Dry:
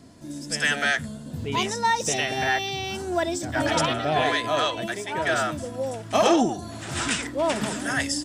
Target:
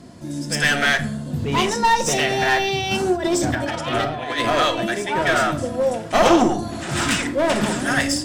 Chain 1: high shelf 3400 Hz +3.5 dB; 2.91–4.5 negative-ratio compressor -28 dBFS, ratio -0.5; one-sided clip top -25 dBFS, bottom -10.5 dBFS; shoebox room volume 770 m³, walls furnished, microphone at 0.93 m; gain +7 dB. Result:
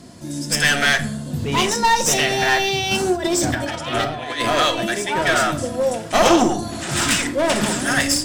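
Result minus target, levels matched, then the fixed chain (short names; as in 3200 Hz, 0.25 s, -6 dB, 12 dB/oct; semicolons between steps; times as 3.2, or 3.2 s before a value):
8000 Hz band +4.0 dB
high shelf 3400 Hz -4 dB; 2.91–4.5 negative-ratio compressor -28 dBFS, ratio -0.5; one-sided clip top -25 dBFS, bottom -10.5 dBFS; shoebox room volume 770 m³, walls furnished, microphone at 0.93 m; gain +7 dB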